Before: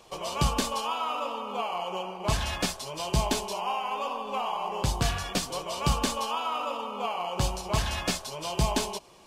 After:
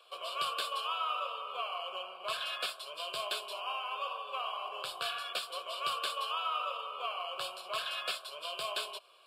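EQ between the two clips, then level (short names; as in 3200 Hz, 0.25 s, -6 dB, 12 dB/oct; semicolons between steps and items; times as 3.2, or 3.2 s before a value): HPF 880 Hz 12 dB/oct; high shelf 10000 Hz -10.5 dB; fixed phaser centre 1300 Hz, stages 8; 0.0 dB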